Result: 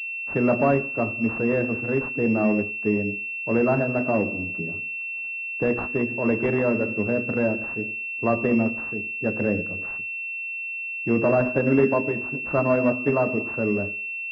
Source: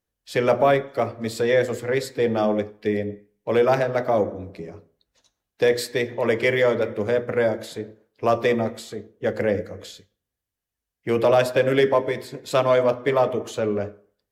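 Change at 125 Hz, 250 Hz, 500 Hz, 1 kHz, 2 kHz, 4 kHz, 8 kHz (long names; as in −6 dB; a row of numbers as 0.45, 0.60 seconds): +1.5 dB, +4.5 dB, −4.0 dB, −4.5 dB, +4.0 dB, below −15 dB, below −20 dB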